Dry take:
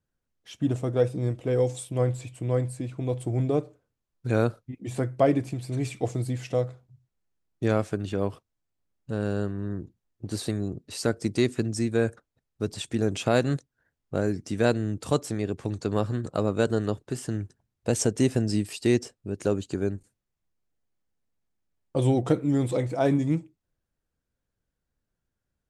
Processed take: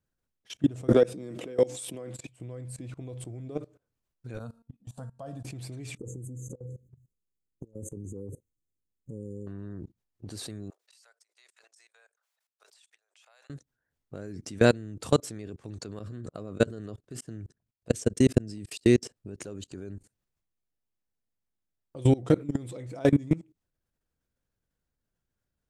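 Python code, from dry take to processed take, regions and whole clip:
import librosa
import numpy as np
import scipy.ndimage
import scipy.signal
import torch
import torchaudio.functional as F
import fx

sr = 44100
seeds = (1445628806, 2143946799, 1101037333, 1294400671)

y = fx.chain(x, sr, fx.highpass(hz=180.0, slope=24),
    fx.pre_swell(db_per_s=28.0), at=(0.88, 2.29))
y = fx.chain(y, sr, fx.peak_eq(hz=5300.0, db=-4.5, octaves=0.29),
    fx.fixed_phaser(hz=890.0, stages=4),
    fx.comb_fb(f0_hz=230.0, decay_s=0.36, harmonics='all', damping=0.0, mix_pct=60), at=(4.39, 5.45))
y = fx.chain(y, sr, fx.brickwall_bandstop(low_hz=560.0, high_hz=6100.0),
    fx.peak_eq(hz=1400.0, db=-12.0, octaves=0.73),
    fx.over_compress(threshold_db=-33.0, ratio=-0.5), at=(5.97, 9.47))
y = fx.chain(y, sr, fx.bessel_highpass(hz=1100.0, order=8),
    fx.gate_flip(shuts_db=-35.0, range_db=-26),
    fx.sustainer(db_per_s=110.0), at=(10.7, 13.5))
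y = fx.chain(y, sr, fx.peak_eq(hz=200.0, db=2.5, octaves=2.9),
    fx.notch(hz=870.0, q=5.7),
    fx.level_steps(step_db=20), at=(15.99, 19.03))
y = fx.dynamic_eq(y, sr, hz=820.0, q=1.9, threshold_db=-42.0, ratio=4.0, max_db=-5)
y = fx.level_steps(y, sr, step_db=22)
y = y * librosa.db_to_amplitude(4.5)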